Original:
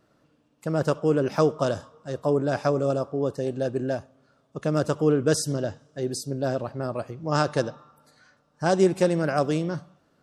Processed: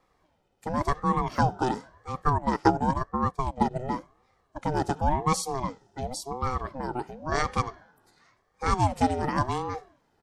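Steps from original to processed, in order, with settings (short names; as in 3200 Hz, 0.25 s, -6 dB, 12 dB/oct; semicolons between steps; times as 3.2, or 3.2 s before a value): comb 1.8 ms, depth 41%; 2.23–3.71 transient shaper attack +8 dB, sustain -9 dB; ring modulator with a swept carrier 450 Hz, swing 45%, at 0.93 Hz; gain -1 dB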